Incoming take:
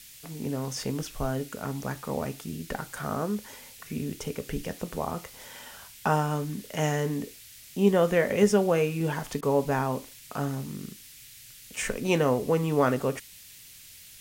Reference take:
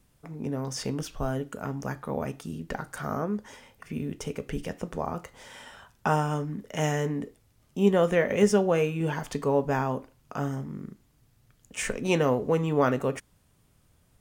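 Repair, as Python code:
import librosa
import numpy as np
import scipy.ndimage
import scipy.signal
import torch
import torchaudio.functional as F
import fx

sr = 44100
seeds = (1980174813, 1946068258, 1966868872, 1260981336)

y = fx.fix_interpolate(x, sr, at_s=(9.41,), length_ms=15.0)
y = fx.noise_reduce(y, sr, print_start_s=13.38, print_end_s=13.88, reduce_db=15.0)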